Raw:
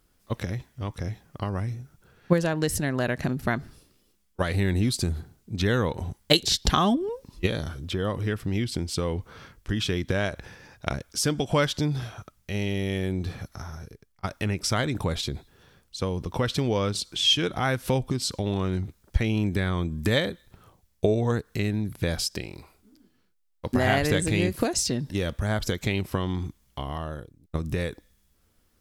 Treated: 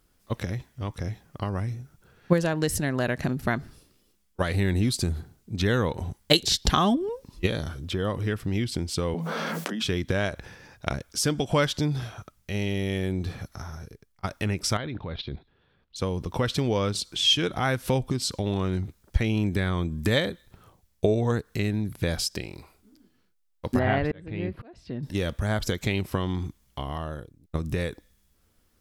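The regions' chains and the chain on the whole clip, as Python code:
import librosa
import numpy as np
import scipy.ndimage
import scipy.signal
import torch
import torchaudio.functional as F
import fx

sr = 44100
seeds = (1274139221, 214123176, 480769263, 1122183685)

y = fx.chain(x, sr, fx.cheby_ripple_highpass(hz=160.0, ripple_db=9),
    fx.env_flatten(amount_pct=100), at=(9.14, 9.82))
y = fx.chain(y, sr, fx.steep_lowpass(hz=4100.0, slope=36),
    fx.level_steps(step_db=11), at=(14.77, 15.96))
y = fx.chain(y, sr, fx.auto_swell(attack_ms=597.0),
    fx.air_absorb(metres=420.0), at=(23.79, 25.03))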